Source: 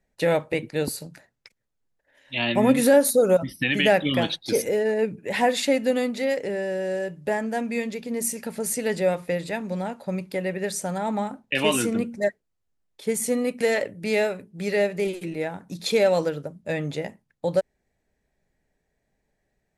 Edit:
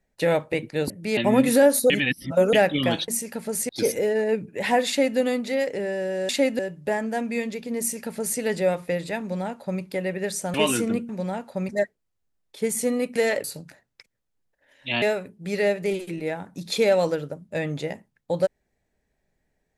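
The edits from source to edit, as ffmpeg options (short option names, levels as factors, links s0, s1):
-filter_complex "[0:a]asplit=14[s0][s1][s2][s3][s4][s5][s6][s7][s8][s9][s10][s11][s12][s13];[s0]atrim=end=0.902[s14];[s1]atrim=start=13.888:end=14.162[s15];[s2]atrim=start=2.478:end=3.212[s16];[s3]atrim=start=3.208:end=3.842,asetpts=PTS-STARTPTS,areverse[s17];[s4]atrim=start=3.838:end=4.392[s18];[s5]atrim=start=8.188:end=8.802[s19];[s6]atrim=start=4.388:end=6.992[s20];[s7]atrim=start=5.578:end=5.882[s21];[s8]atrim=start=6.988:end=10.942[s22];[s9]atrim=start=11.588:end=12.142[s23];[s10]atrim=start=9.608:end=10.212[s24];[s11]atrim=start=12.138:end=13.892[s25];[s12]atrim=start=0.898:end=2.482[s26];[s13]atrim=start=14.158[s27];[s14][s15]acrossfade=d=0.004:c1=hsin:c2=hsin[s28];[s28][s16]acrossfade=d=0.004:c1=hsin:c2=hsin[s29];[s29][s17]acrossfade=d=0.004:c1=hsin:c2=hsin[s30];[s30][s18]acrossfade=d=0.004:c1=hsin:c2=hsin[s31];[s31][s19]acrossfade=d=0.004:c1=hsin:c2=hsin[s32];[s32][s20]acrossfade=d=0.004:c1=hsin:c2=hsin[s33];[s33][s21]acrossfade=d=0.004:c1=hsin:c2=hsin[s34];[s34][s22]acrossfade=d=0.004:c1=hsin:c2=hsin[s35];[s35][s23]acrossfade=d=0.004:c1=hsin:c2=hsin[s36];[s36][s24]acrossfade=d=0.004:c1=hsin:c2=hsin[s37];[s37][s25]acrossfade=d=0.004:c1=hsin:c2=hsin[s38];[s38][s26]acrossfade=d=0.004:c1=hsin:c2=hsin[s39];[s39][s27]acrossfade=d=0.004:c1=hsin:c2=hsin"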